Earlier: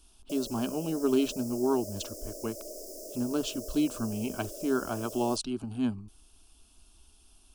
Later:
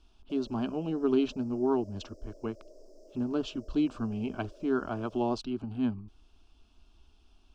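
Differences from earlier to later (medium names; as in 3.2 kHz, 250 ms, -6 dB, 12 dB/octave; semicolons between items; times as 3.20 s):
background -10.0 dB; master: add distance through air 190 m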